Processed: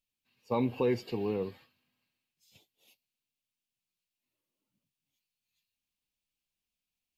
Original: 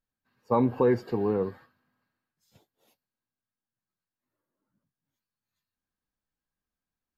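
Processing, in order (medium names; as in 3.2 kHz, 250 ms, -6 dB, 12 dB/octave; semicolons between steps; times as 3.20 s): resonant high shelf 2 kHz +8.5 dB, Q 3; trim -5.5 dB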